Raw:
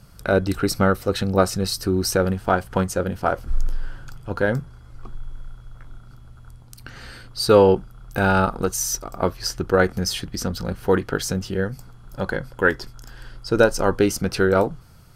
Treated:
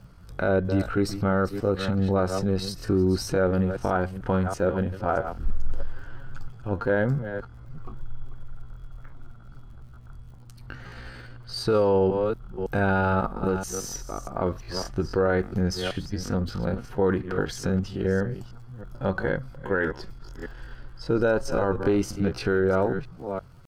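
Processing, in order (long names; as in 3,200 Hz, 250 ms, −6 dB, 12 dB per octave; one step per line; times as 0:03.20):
delay that plays each chunk backwards 208 ms, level −12.5 dB
low-pass filter 1,900 Hz 6 dB per octave
brickwall limiter −13.5 dBFS, peak gain reduction 10 dB
surface crackle 59 per second −50 dBFS
tempo change 0.64×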